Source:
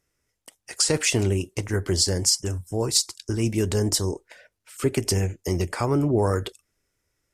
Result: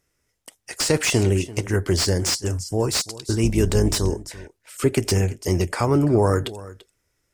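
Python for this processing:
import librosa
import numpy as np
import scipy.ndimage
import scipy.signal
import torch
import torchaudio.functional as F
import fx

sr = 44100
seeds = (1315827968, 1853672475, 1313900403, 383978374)

y = fx.octave_divider(x, sr, octaves=2, level_db=-3.0, at=(3.43, 4.14))
y = y + 10.0 ** (-18.0 / 20.0) * np.pad(y, (int(339 * sr / 1000.0), 0))[:len(y)]
y = fx.slew_limit(y, sr, full_power_hz=380.0)
y = F.gain(torch.from_numpy(y), 3.5).numpy()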